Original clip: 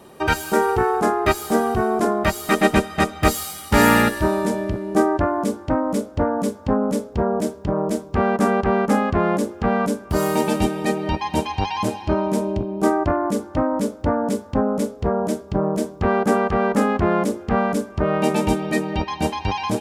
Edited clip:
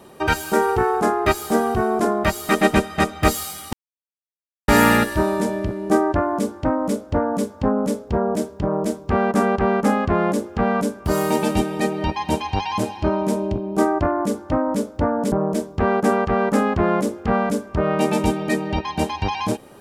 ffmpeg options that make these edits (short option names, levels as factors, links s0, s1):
-filter_complex "[0:a]asplit=3[s0][s1][s2];[s0]atrim=end=3.73,asetpts=PTS-STARTPTS,afade=t=out:st=3.726:d=0.004:c=hsin,apad=pad_dur=0.95[s3];[s1]atrim=start=3.73:end=14.372,asetpts=PTS-STARTPTS,afade=t=in:d=0.004:c=hsin[s4];[s2]atrim=start=15.548[s5];[s3][s4]concat=n=2:v=0:a=1[s6];[s6][s5]acrossfade=d=0.004:c1=hsin:c2=hsin"